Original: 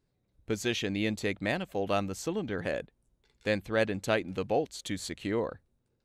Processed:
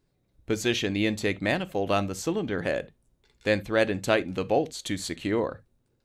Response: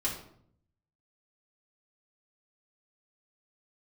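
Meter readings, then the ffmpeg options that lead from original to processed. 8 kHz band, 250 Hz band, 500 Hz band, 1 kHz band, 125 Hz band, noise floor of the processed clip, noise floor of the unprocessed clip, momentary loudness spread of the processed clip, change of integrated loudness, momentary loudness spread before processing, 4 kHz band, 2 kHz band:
+4.5 dB, +4.5 dB, +4.5 dB, +4.5 dB, +4.0 dB, -72 dBFS, -77 dBFS, 7 LU, +4.5 dB, 7 LU, +5.0 dB, +4.5 dB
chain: -filter_complex "[0:a]asplit=2[s0][s1];[1:a]atrim=start_sample=2205,atrim=end_sample=3528[s2];[s1][s2]afir=irnorm=-1:irlink=0,volume=0.15[s3];[s0][s3]amix=inputs=2:normalize=0,volume=1.5"

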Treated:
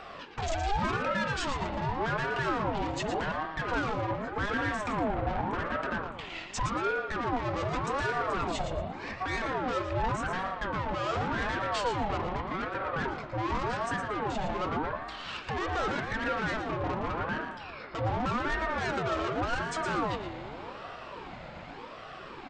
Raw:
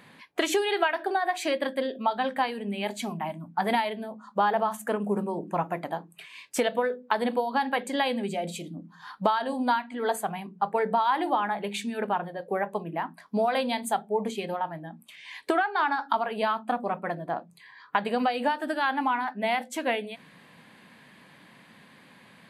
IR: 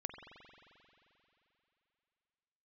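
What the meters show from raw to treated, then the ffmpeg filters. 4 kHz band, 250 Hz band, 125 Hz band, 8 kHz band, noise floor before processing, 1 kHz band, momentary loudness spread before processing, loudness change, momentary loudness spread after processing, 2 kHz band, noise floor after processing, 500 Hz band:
-4.0 dB, -3.5 dB, +7.0 dB, -5.0 dB, -55 dBFS, -4.0 dB, 9 LU, -3.5 dB, 9 LU, -1.0 dB, -44 dBFS, -4.5 dB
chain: -filter_complex "[0:a]equalizer=f=370:t=o:w=2.1:g=13,alimiter=limit=0.1:level=0:latency=1:release=87,aresample=16000,asoftclip=type=tanh:threshold=0.0224,aresample=44100,flanger=delay=0.7:depth=9.8:regen=51:speed=0.32:shape=sinusoidal,aecho=1:1:115|230|345:0.376|0.0789|0.0166,asplit=2[s0][s1];[1:a]atrim=start_sample=2205[s2];[s1][s2]afir=irnorm=-1:irlink=0,volume=1.68[s3];[s0][s3]amix=inputs=2:normalize=0,aeval=exprs='val(0)*sin(2*PI*640*n/s+640*0.5/0.86*sin(2*PI*0.86*n/s))':c=same,volume=1.5"

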